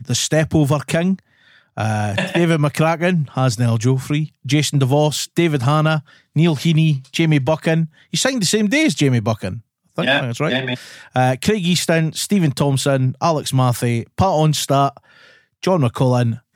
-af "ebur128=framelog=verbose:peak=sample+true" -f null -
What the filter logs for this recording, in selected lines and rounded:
Integrated loudness:
  I:         -17.7 LUFS
  Threshold: -28.0 LUFS
Loudness range:
  LRA:         1.6 LU
  Threshold: -37.9 LUFS
  LRA low:   -18.7 LUFS
  LRA high:  -17.1 LUFS
Sample peak:
  Peak:       -3.6 dBFS
True peak:
  Peak:       -3.6 dBFS